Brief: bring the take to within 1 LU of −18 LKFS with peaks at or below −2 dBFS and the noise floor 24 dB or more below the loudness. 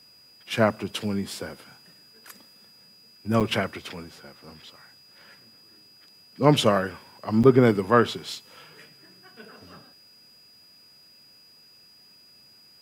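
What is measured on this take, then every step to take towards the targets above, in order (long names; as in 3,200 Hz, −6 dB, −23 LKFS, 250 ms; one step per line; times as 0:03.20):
number of dropouts 2; longest dropout 7.6 ms; interfering tone 4,900 Hz; level of the tone −52 dBFS; integrated loudness −23.5 LKFS; sample peak −3.5 dBFS; target loudness −18.0 LKFS
→ repair the gap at 0:03.40/0:07.43, 7.6 ms
notch filter 4,900 Hz, Q 30
level +5.5 dB
brickwall limiter −2 dBFS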